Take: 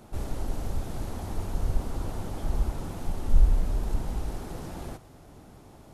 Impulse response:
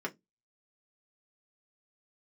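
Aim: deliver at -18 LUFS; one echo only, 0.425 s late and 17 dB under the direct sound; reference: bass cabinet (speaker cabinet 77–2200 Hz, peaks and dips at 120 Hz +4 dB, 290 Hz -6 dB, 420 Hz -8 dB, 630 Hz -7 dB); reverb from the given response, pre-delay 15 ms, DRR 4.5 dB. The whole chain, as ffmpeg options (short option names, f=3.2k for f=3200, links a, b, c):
-filter_complex "[0:a]aecho=1:1:425:0.141,asplit=2[a][b];[1:a]atrim=start_sample=2205,adelay=15[c];[b][c]afir=irnorm=-1:irlink=0,volume=-8.5dB[d];[a][d]amix=inputs=2:normalize=0,highpass=f=77:w=0.5412,highpass=f=77:w=1.3066,equalizer=f=120:t=q:w=4:g=4,equalizer=f=290:t=q:w=4:g=-6,equalizer=f=420:t=q:w=4:g=-8,equalizer=f=630:t=q:w=4:g=-7,lowpass=f=2.2k:w=0.5412,lowpass=f=2.2k:w=1.3066,volume=20dB"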